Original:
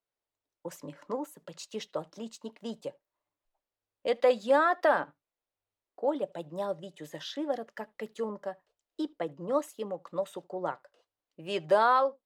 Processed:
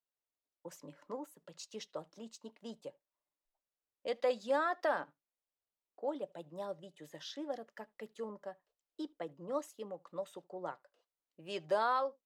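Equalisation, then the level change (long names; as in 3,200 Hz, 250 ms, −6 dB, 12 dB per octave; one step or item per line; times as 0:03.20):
parametric band 87 Hz −12 dB 0.42 octaves
dynamic equaliser 5,600 Hz, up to +6 dB, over −55 dBFS, Q 1.5
−8.5 dB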